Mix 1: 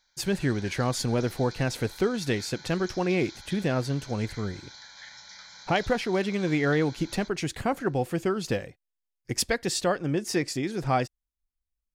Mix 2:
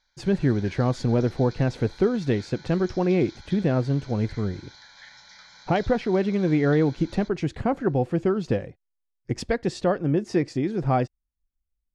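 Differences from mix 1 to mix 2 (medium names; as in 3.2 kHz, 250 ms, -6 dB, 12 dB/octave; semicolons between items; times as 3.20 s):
speech: add tilt shelf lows +5.5 dB, about 1.1 kHz; master: add distance through air 85 m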